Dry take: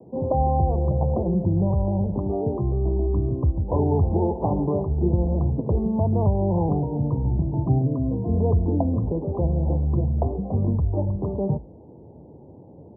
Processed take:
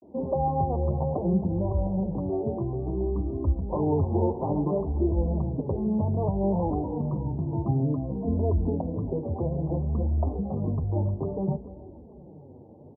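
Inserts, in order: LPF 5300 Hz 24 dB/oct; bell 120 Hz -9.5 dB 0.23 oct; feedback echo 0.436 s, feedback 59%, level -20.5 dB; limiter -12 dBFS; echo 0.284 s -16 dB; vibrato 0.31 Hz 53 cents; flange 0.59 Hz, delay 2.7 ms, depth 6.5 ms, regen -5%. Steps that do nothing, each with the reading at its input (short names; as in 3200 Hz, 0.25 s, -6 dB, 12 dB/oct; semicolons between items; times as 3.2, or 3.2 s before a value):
LPF 5300 Hz: input band ends at 910 Hz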